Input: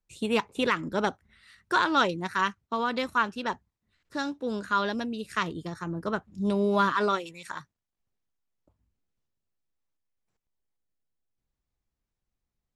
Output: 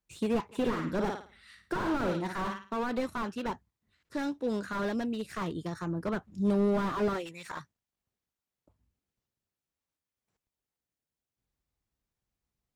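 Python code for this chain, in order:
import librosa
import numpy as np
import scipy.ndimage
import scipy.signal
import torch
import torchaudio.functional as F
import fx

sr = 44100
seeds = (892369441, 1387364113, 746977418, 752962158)

y = scipy.signal.sosfilt(scipy.signal.butter(2, 41.0, 'highpass', fs=sr, output='sos'), x)
y = fx.room_flutter(y, sr, wall_m=9.4, rt60_s=0.37, at=(0.51, 2.76), fade=0.02)
y = fx.slew_limit(y, sr, full_power_hz=26.0)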